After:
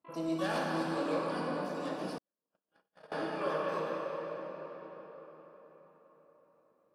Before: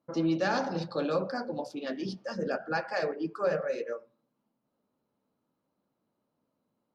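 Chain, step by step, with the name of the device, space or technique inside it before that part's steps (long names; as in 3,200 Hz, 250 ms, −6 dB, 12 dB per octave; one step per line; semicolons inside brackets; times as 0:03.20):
shimmer-style reverb (pitch-shifted copies added +12 semitones −7 dB; convolution reverb RT60 5.0 s, pre-delay 14 ms, DRR −3.5 dB)
0:02.18–0:03.12: noise gate −21 dBFS, range −58 dB
level −9 dB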